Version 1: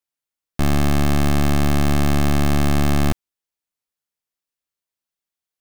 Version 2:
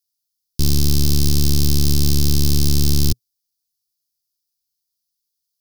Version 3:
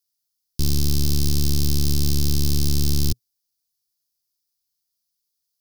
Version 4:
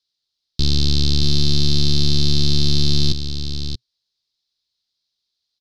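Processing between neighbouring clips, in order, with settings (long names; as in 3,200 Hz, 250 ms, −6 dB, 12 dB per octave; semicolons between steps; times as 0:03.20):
drawn EQ curve 120 Hz 0 dB, 250 Hz −9 dB, 410 Hz −5 dB, 610 Hz −24 dB, 2,000 Hz −21 dB, 5,000 Hz +11 dB, 7,700 Hz +2 dB, 12,000 Hz +8 dB; level +3.5 dB
brickwall limiter −9.5 dBFS, peak gain reduction 4.5 dB
low-pass with resonance 3,900 Hz, resonance Q 4.4; single-tap delay 629 ms −8.5 dB; level +2.5 dB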